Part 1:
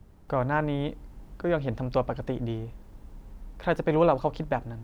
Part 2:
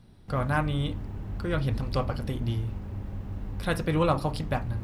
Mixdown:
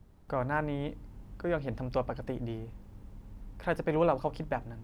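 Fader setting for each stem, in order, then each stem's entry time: −5.0, −18.5 decibels; 0.00, 0.00 seconds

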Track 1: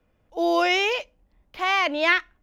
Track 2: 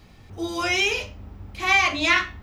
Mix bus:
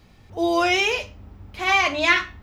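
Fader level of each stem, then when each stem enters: −1.0, −2.5 decibels; 0.00, 0.00 seconds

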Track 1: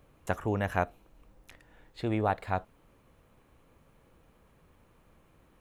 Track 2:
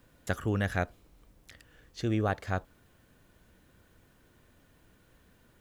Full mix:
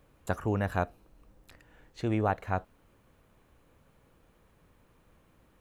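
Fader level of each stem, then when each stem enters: −2.0, −9.5 decibels; 0.00, 0.00 seconds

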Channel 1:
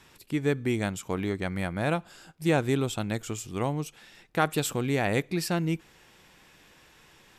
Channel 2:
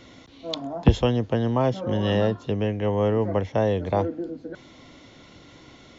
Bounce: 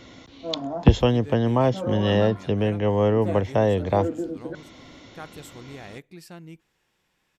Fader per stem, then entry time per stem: −15.0, +2.0 decibels; 0.80, 0.00 seconds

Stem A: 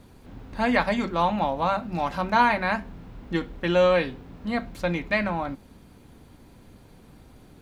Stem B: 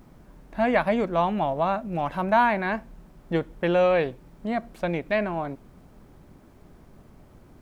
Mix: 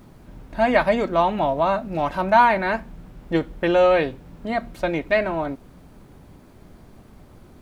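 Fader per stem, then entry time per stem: −3.5, +3.0 decibels; 0.00, 0.00 seconds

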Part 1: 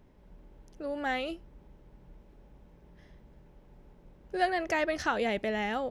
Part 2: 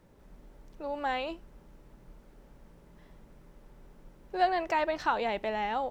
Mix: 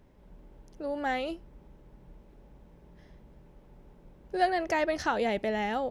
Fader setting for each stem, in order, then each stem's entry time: 0.0, −12.0 decibels; 0.00, 0.00 seconds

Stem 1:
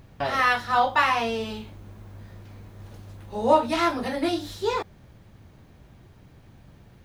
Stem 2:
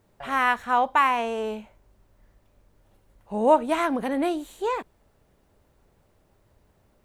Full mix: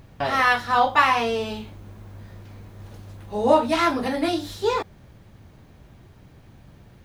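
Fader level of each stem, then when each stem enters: +2.0, −6.0 decibels; 0.00, 0.00 seconds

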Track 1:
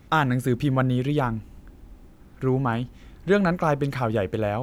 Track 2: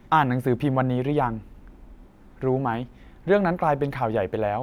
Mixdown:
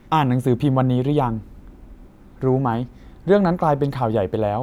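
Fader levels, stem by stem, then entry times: −4.0, +1.5 decibels; 0.00, 0.00 seconds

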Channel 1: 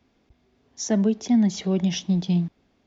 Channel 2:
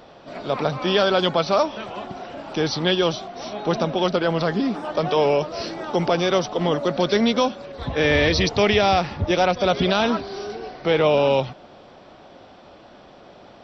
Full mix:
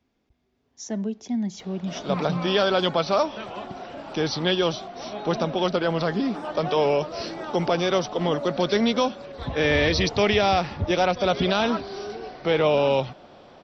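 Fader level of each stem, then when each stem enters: −7.5, −2.5 decibels; 0.00, 1.60 seconds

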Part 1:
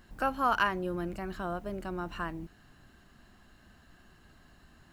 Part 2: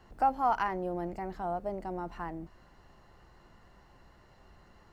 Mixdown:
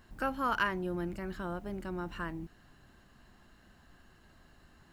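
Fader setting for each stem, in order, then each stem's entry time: −2.5, −10.0 decibels; 0.00, 0.00 seconds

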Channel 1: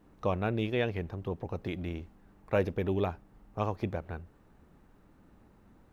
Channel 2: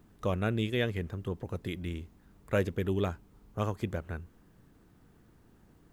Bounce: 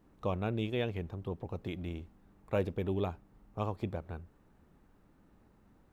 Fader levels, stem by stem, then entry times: −4.5, −16.0 decibels; 0.00, 0.00 seconds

